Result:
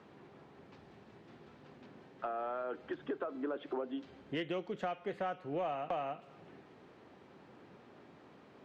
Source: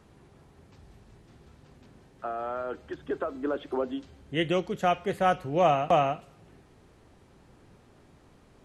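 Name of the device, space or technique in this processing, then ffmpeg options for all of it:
AM radio: -af "highpass=200,lowpass=3500,acompressor=threshold=-37dB:ratio=5,asoftclip=type=tanh:threshold=-27dB,volume=2dB"

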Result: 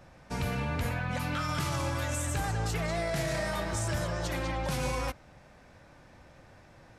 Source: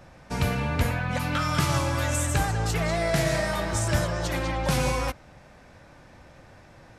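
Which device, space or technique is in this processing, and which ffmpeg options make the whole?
clipper into limiter: -af "asoftclip=type=hard:threshold=-13dB,alimiter=limit=-18dB:level=0:latency=1:release=29,volume=-4.5dB"

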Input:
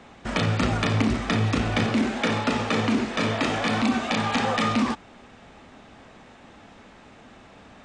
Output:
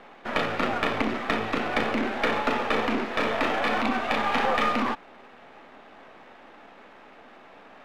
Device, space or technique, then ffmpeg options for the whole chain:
crystal radio: -af "highpass=360,lowpass=2600,aeval=exprs='if(lt(val(0),0),0.447*val(0),val(0))':channel_layout=same,volume=4.5dB"

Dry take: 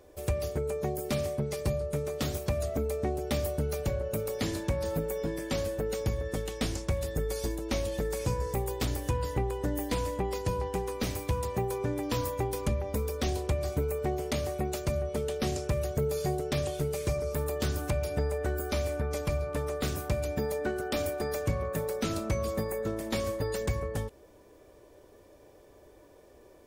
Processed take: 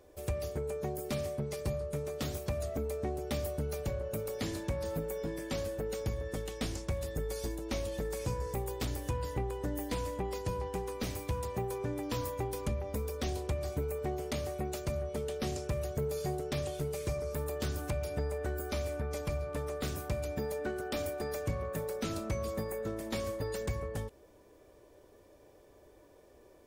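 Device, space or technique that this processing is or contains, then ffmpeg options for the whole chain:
parallel distortion: -filter_complex "[0:a]asplit=2[link_01][link_02];[link_02]asoftclip=type=hard:threshold=-35dB,volume=-12dB[link_03];[link_01][link_03]amix=inputs=2:normalize=0,volume=-5.5dB"

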